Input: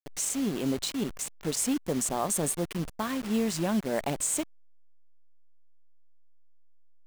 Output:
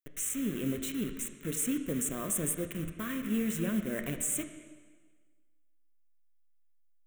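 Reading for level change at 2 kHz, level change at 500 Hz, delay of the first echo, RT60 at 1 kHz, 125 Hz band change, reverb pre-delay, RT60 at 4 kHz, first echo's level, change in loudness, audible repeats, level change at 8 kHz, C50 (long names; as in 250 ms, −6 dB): −2.0 dB, −6.5 dB, no echo audible, 1.5 s, −2.5 dB, 5 ms, 1.4 s, no echo audible, −3.5 dB, no echo audible, −3.5 dB, 8.0 dB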